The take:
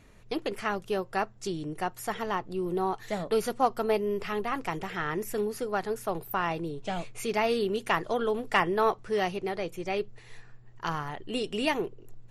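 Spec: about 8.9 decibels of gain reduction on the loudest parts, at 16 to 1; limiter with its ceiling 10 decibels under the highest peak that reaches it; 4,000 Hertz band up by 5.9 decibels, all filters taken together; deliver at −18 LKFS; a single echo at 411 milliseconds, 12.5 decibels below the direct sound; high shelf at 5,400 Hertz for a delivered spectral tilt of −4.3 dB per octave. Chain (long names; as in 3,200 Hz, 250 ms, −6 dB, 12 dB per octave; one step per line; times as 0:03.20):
parametric band 4,000 Hz +6.5 dB
high-shelf EQ 5,400 Hz +5 dB
downward compressor 16 to 1, threshold −28 dBFS
brickwall limiter −25 dBFS
single-tap delay 411 ms −12.5 dB
level +17.5 dB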